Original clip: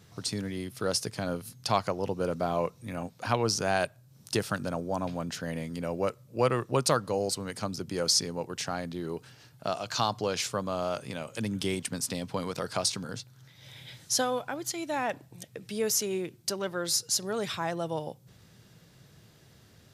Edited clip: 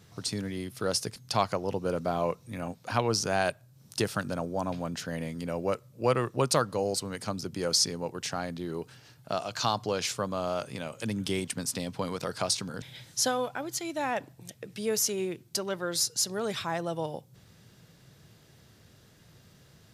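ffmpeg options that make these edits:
-filter_complex "[0:a]asplit=3[s0][s1][s2];[s0]atrim=end=1.162[s3];[s1]atrim=start=1.508:end=13.172[s4];[s2]atrim=start=13.748[s5];[s3][s4]acrossfade=d=0.004:c1=hsin:c2=hsin[s6];[s6][s5]acrossfade=d=0.004:c1=hsin:c2=hsin"

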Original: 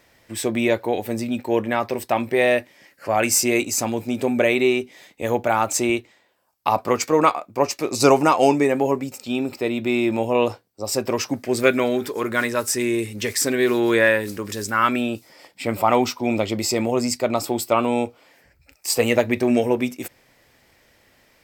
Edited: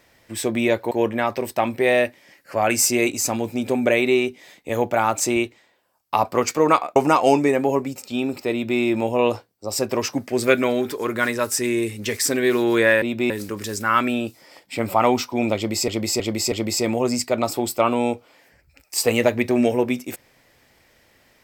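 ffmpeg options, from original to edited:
-filter_complex "[0:a]asplit=8[s0][s1][s2][s3][s4][s5][s6][s7];[s0]atrim=end=0.912[s8];[s1]atrim=start=1.438:end=7.492[s9];[s2]atrim=start=8.118:end=14.182[s10];[s3]atrim=start=9.678:end=9.962[s11];[s4]atrim=start=14.178:end=16.762[s12];[s5]atrim=start=16.438:end=16.762[s13];[s6]atrim=start=16.438:end=16.762[s14];[s7]atrim=start=16.438[s15];[s8][s9]acrossfade=d=0.004:c1=hsin:c2=hsin[s16];[s16][s10]acrossfade=d=0.004:c1=hsin:c2=hsin[s17];[s17][s11]acrossfade=d=0.004:c1=hsin:c2=hsin[s18];[s18][s12]acrossfade=d=0.004:c1=hsin:c2=hsin[s19];[s19][s13]acrossfade=d=0.004:c1=hsin:c2=hsin[s20];[s20][s14]acrossfade=d=0.004:c1=hsin:c2=hsin[s21];[s21][s15]acrossfade=d=0.004:c1=hsin:c2=hsin"

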